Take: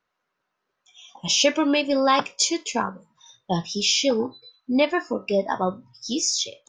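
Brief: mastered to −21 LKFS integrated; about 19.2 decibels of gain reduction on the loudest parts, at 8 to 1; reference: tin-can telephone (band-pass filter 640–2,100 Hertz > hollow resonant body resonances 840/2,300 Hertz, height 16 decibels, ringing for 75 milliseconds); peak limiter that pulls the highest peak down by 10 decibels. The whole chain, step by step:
downward compressor 8 to 1, threshold −35 dBFS
brickwall limiter −31 dBFS
band-pass filter 640–2,100 Hz
hollow resonant body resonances 840/2,300 Hz, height 16 dB, ringing for 75 ms
level +23.5 dB

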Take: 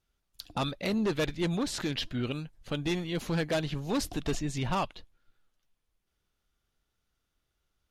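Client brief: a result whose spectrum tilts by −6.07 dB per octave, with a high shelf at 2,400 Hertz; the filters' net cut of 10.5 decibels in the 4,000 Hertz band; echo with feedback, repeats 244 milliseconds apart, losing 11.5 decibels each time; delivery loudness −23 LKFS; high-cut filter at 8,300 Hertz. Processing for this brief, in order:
low-pass filter 8,300 Hz
high-shelf EQ 2,400 Hz −8.5 dB
parametric band 4,000 Hz −6 dB
repeating echo 244 ms, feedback 27%, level −11.5 dB
level +10 dB

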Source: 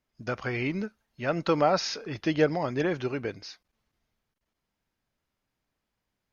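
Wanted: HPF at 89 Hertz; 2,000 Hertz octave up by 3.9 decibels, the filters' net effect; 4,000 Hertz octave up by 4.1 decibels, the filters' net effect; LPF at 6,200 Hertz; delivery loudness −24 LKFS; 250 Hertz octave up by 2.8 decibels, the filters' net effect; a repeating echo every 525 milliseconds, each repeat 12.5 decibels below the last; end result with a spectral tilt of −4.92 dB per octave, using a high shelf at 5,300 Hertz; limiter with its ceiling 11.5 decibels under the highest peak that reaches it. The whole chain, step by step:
high-pass filter 89 Hz
low-pass filter 6,200 Hz
parametric band 250 Hz +4 dB
parametric band 2,000 Hz +3.5 dB
parametric band 4,000 Hz +3.5 dB
high-shelf EQ 5,300 Hz +4.5 dB
brickwall limiter −19.5 dBFS
repeating echo 525 ms, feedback 24%, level −12.5 dB
level +7 dB

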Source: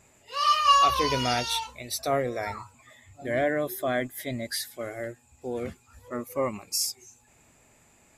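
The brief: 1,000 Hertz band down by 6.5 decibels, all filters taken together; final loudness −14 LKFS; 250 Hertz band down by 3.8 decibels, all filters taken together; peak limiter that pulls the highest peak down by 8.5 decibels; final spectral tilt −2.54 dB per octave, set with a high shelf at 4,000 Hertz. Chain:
parametric band 250 Hz −4 dB
parametric band 1,000 Hz −8.5 dB
high-shelf EQ 4,000 Hz +8.5 dB
level +15.5 dB
brickwall limiter −2 dBFS

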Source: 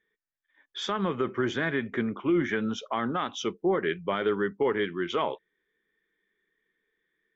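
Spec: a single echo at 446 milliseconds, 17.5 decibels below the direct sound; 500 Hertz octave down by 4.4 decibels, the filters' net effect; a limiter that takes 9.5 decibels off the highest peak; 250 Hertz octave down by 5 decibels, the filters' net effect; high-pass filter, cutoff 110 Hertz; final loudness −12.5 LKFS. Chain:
high-pass filter 110 Hz
parametric band 250 Hz −5.5 dB
parametric band 500 Hz −3.5 dB
brickwall limiter −27 dBFS
single-tap delay 446 ms −17.5 dB
level +24.5 dB

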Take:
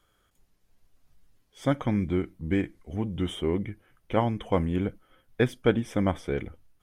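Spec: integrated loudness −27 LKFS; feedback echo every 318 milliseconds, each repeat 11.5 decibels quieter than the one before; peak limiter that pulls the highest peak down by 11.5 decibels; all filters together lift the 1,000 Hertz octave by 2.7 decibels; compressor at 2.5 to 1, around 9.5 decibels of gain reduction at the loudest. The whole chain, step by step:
parametric band 1,000 Hz +3.5 dB
downward compressor 2.5 to 1, threshold −31 dBFS
brickwall limiter −26.5 dBFS
repeating echo 318 ms, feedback 27%, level −11.5 dB
level +12 dB

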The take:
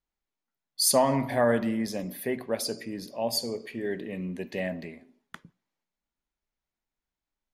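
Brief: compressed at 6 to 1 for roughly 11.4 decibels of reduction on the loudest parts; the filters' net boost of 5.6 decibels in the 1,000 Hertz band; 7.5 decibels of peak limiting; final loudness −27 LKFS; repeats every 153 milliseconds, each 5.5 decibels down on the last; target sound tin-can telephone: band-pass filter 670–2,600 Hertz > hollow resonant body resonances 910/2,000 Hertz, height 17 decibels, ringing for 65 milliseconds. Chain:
parametric band 1,000 Hz +8.5 dB
downward compressor 6 to 1, threshold −25 dBFS
brickwall limiter −22.5 dBFS
band-pass filter 670–2,600 Hz
repeating echo 153 ms, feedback 53%, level −5.5 dB
hollow resonant body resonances 910/2,000 Hz, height 17 dB, ringing for 65 ms
level +6 dB

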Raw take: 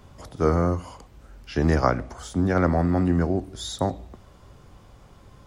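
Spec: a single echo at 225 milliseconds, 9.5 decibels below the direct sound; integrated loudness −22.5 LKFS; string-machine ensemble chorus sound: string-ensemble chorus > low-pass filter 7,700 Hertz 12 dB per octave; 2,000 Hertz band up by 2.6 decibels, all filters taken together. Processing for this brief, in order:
parametric band 2,000 Hz +3.5 dB
single-tap delay 225 ms −9.5 dB
string-ensemble chorus
low-pass filter 7,700 Hz 12 dB per octave
level +4.5 dB

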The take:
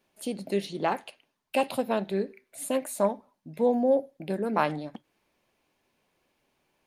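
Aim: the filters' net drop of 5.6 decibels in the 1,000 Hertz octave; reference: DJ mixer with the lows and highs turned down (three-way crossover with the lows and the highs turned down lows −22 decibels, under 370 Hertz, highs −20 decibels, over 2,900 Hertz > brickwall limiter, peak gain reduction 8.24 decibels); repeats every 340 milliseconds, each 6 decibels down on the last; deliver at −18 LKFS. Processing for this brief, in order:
three-way crossover with the lows and the highs turned down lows −22 dB, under 370 Hz, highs −20 dB, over 2,900 Hz
parametric band 1,000 Hz −7 dB
repeating echo 340 ms, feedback 50%, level −6 dB
level +18 dB
brickwall limiter −5.5 dBFS

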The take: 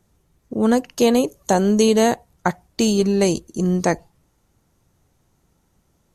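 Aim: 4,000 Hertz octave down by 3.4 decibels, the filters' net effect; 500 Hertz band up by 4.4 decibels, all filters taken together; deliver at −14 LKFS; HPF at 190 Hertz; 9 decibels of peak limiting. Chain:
high-pass filter 190 Hz
parametric band 500 Hz +5.5 dB
parametric band 4,000 Hz −4.5 dB
level +7 dB
brickwall limiter −3 dBFS

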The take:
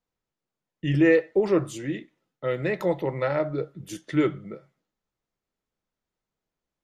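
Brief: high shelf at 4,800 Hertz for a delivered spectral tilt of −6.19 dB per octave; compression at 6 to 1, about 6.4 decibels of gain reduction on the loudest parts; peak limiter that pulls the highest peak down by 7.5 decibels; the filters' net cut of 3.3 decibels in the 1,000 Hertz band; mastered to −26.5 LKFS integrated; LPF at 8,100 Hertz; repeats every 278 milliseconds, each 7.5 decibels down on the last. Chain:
low-pass filter 8,100 Hz
parametric band 1,000 Hz −5 dB
high-shelf EQ 4,800 Hz +6.5 dB
downward compressor 6 to 1, threshold −21 dBFS
brickwall limiter −22 dBFS
repeating echo 278 ms, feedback 42%, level −7.5 dB
level +6 dB

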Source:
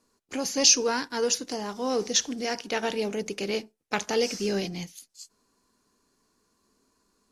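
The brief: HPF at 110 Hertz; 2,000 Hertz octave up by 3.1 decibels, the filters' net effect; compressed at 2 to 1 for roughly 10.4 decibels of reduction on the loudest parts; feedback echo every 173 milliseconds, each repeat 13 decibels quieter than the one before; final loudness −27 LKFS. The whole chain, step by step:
high-pass filter 110 Hz
parametric band 2,000 Hz +4 dB
downward compressor 2 to 1, threshold −33 dBFS
repeating echo 173 ms, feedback 22%, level −13 dB
level +5.5 dB

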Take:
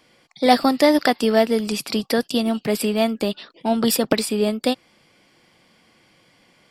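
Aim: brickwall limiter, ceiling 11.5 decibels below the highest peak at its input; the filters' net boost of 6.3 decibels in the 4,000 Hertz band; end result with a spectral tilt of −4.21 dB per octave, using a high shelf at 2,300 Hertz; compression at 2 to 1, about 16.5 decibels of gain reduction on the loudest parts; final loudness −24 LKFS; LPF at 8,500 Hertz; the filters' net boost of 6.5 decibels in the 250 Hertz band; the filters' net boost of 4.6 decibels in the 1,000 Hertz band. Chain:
low-pass filter 8,500 Hz
parametric band 250 Hz +7 dB
parametric band 1,000 Hz +5.5 dB
high-shelf EQ 2,300 Hz +4.5 dB
parametric band 4,000 Hz +3.5 dB
downward compressor 2 to 1, threshold −36 dBFS
level +8.5 dB
brickwall limiter −14 dBFS

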